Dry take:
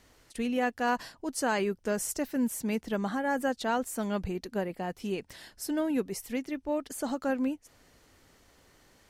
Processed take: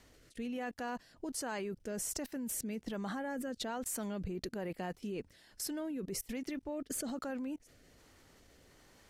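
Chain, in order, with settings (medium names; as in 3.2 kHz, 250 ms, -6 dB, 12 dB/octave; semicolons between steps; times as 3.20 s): rotary cabinet horn 1.2 Hz; level held to a coarse grid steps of 24 dB; trim +9.5 dB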